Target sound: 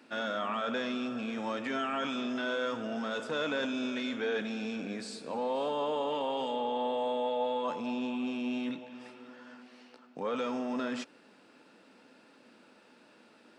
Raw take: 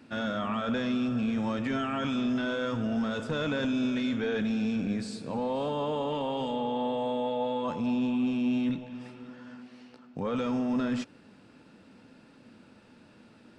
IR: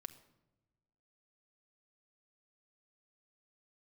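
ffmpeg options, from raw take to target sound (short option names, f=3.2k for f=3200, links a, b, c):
-af "highpass=350"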